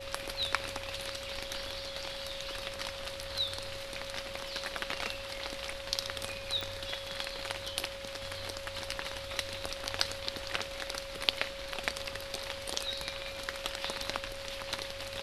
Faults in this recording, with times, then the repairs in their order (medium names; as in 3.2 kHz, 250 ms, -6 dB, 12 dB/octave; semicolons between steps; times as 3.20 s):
whine 550 Hz -43 dBFS
6.61 s: pop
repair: de-click; band-stop 550 Hz, Q 30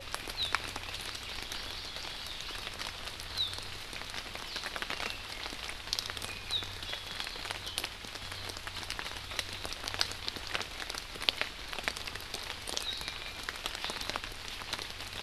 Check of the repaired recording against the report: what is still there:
nothing left